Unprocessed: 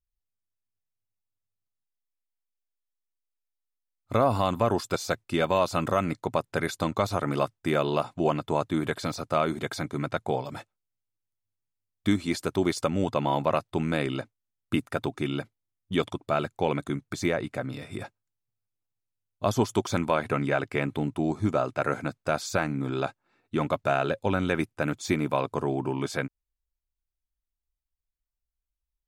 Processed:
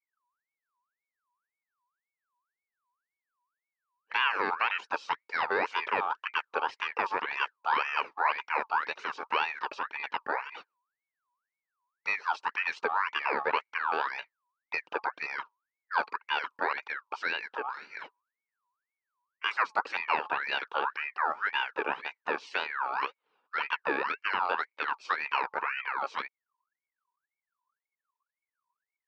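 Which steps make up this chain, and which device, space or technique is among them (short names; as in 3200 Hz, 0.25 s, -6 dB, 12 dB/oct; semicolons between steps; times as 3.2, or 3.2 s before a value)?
voice changer toy (ring modulator with a swept carrier 1600 Hz, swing 40%, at 1.9 Hz; speaker cabinet 400–4100 Hz, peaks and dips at 440 Hz +5 dB, 660 Hz -7 dB, 940 Hz +7 dB, 2000 Hz -8 dB, 3400 Hz -9 dB)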